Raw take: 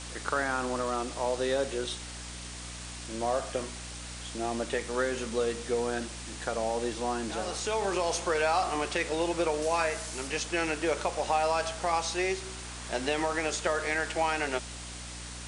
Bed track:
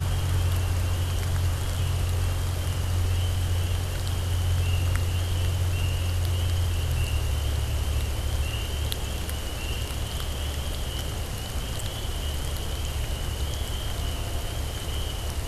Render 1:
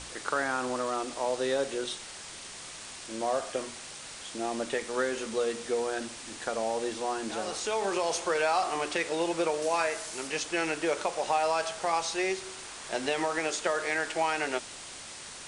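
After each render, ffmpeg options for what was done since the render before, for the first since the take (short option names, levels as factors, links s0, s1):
-af "bandreject=f=60:t=h:w=6,bandreject=f=120:t=h:w=6,bandreject=f=180:t=h:w=6,bandreject=f=240:t=h:w=6,bandreject=f=300:t=h:w=6"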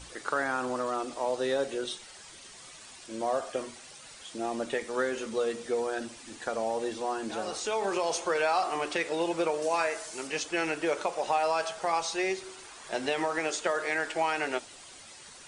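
-af "afftdn=nr=9:nf=-44"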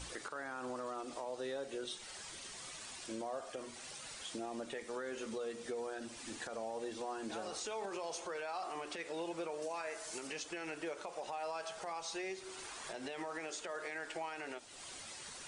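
-af "acompressor=threshold=0.00891:ratio=3,alimiter=level_in=2.51:limit=0.0631:level=0:latency=1:release=56,volume=0.398"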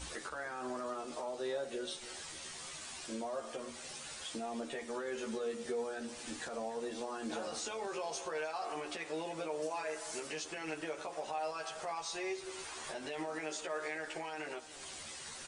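-filter_complex "[0:a]asplit=2[s0][s1];[s1]adelay=13,volume=0.794[s2];[s0][s2]amix=inputs=2:normalize=0,asplit=2[s3][s4];[s4]adelay=297.4,volume=0.178,highshelf=f=4000:g=-6.69[s5];[s3][s5]amix=inputs=2:normalize=0"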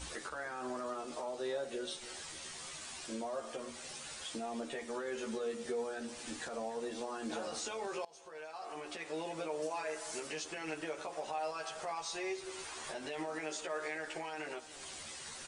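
-filter_complex "[0:a]asplit=2[s0][s1];[s0]atrim=end=8.05,asetpts=PTS-STARTPTS,afade=t=out:st=8.046:d=0.004:c=hsin:silence=0.0707946[s2];[s1]atrim=start=8.05,asetpts=PTS-STARTPTS,afade=t=in:d=1.2:silence=0.0707946[s3];[s2][s3]concat=n=2:v=0:a=1"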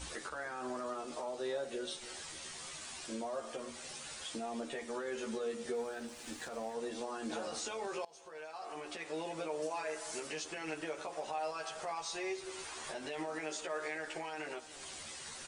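-filter_complex "[0:a]asettb=1/sr,asplit=3[s0][s1][s2];[s0]atrim=end=5.744[s3];[s1]atrim=start=5.74:end=6.74,asetpts=PTS-STARTPTS,afade=t=in:d=0.004:c=qsin,afade=t=out:st=0.996:d=0.004:c=qsin,aeval=exprs='sgn(val(0))*max(abs(val(0))-0.00158,0)':c=same[s4];[s2]atrim=start=6.736[s5];[s3][s4]acrossfade=d=0.004:c1=hsin:c2=qsin[s6];[s6][s5]acrossfade=d=0.004:c1=qsin:c2=hsin"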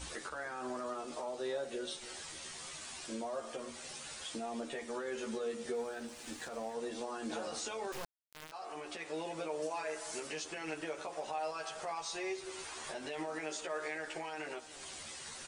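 -filter_complex "[0:a]asettb=1/sr,asplit=3[s0][s1][s2];[s0]atrim=end=7.924[s3];[s1]atrim=start=7.92:end=8.52,asetpts=PTS-STARTPTS,afade=t=in:d=0.004:c=qsin,afade=t=out:st=0.596:d=0.004:c=qsin,acrusher=bits=4:dc=4:mix=0:aa=0.000001[s4];[s2]atrim=start=8.516[s5];[s3][s4]acrossfade=d=0.004:c1=hsin:c2=qsin[s6];[s6][s5]acrossfade=d=0.004:c1=qsin:c2=hsin"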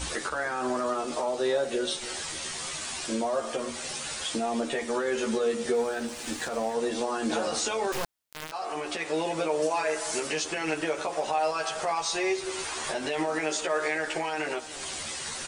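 -af "volume=3.76"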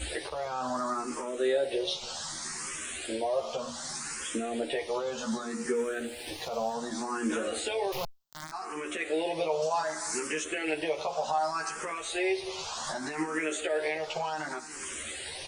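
-filter_complex "[0:a]asplit=2[s0][s1];[s1]afreqshift=0.66[s2];[s0][s2]amix=inputs=2:normalize=1"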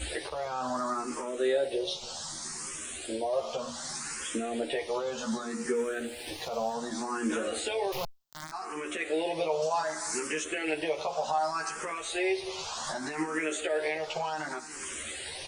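-filter_complex "[0:a]asettb=1/sr,asplit=3[s0][s1][s2];[s0]atrim=end=1.684[s3];[s1]atrim=start=1.68:end=3.33,asetpts=PTS-STARTPTS,afade=t=in:d=0.004:c=qsin,afade=t=out:st=1.646:d=0.004:c=qsin,equalizer=f=1900:t=o:w=1.5:g=-6[s4];[s2]atrim=start=3.326[s5];[s3][s4]acrossfade=d=0.004:c1=hsin:c2=qsin[s6];[s6][s5]acrossfade=d=0.004:c1=qsin:c2=hsin"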